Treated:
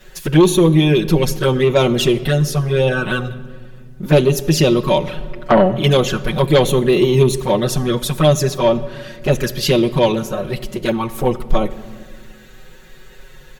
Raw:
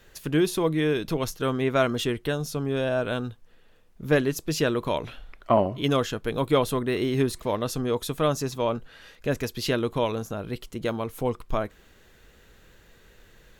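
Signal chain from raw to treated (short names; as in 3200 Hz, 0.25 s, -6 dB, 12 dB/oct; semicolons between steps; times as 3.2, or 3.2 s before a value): comb 5.4 ms, depth 95%; envelope flanger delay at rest 9 ms, full sweep at -19 dBFS; sine folder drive 7 dB, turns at -5 dBFS; reverb RT60 1.9 s, pre-delay 6 ms, DRR 12 dB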